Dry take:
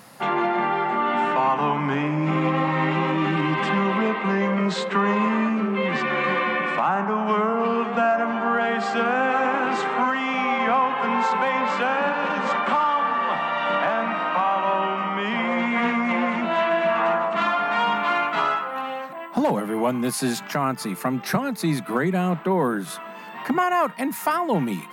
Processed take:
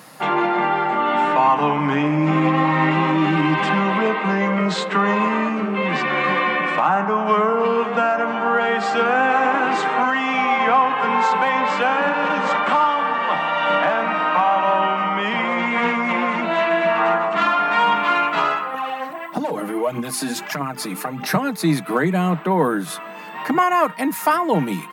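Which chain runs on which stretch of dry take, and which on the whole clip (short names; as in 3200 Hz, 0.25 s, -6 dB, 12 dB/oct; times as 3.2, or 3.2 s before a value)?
18.74–21.27 notches 50/100/150/200/250/300/350 Hz + compressor 3:1, threshold -27 dBFS + phaser 1.6 Hz, delay 4.2 ms, feedback 53%
whole clip: HPF 150 Hz; comb 6.5 ms, depth 38%; gain +3.5 dB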